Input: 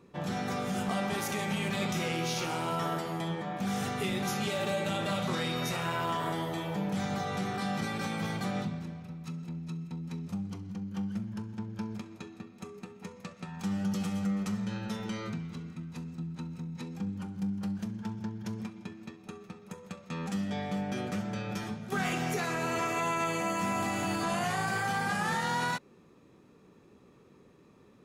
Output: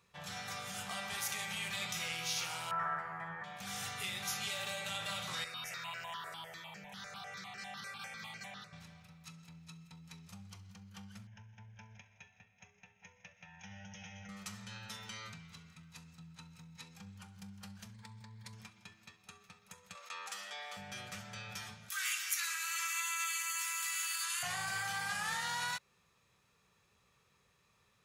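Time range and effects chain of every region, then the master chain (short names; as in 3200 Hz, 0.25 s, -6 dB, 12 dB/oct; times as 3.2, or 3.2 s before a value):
2.71–3.44 median filter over 3 samples + EQ curve 540 Hz 0 dB, 1700 Hz +9 dB, 3400 Hz -23 dB
5.44–8.73 HPF 190 Hz + high shelf 9800 Hz -10 dB + step phaser 10 Hz 870–3500 Hz
11.27–14.29 brick-wall FIR low-pass 6700 Hz + fixed phaser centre 1200 Hz, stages 6
17.94–18.53 ripple EQ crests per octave 0.97, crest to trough 10 dB + compressor 3:1, threshold -35 dBFS
19.95–20.77 HPF 380 Hz 24 dB/oct + bell 1200 Hz +5 dB 0.54 oct + fast leveller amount 50%
21.89–24.43 steep high-pass 1200 Hz + high shelf 7200 Hz +11.5 dB
whole clip: HPF 48 Hz; passive tone stack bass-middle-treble 10-0-10; gain +1 dB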